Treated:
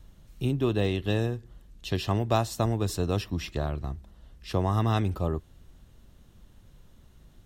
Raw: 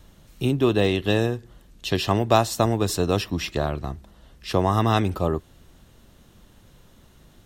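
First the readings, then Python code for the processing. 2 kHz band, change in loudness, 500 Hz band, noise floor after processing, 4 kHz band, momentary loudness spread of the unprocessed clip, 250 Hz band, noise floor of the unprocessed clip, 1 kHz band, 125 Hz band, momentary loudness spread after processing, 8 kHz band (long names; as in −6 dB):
−8.0 dB, −5.5 dB, −7.0 dB, −56 dBFS, −8.0 dB, 13 LU, −6.0 dB, −54 dBFS, −8.0 dB, −2.5 dB, 11 LU, −8.0 dB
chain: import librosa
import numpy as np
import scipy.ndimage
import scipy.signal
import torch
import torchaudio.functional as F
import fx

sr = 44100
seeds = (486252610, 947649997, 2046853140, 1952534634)

y = fx.low_shelf(x, sr, hz=130.0, db=10.0)
y = y * 10.0 ** (-8.0 / 20.0)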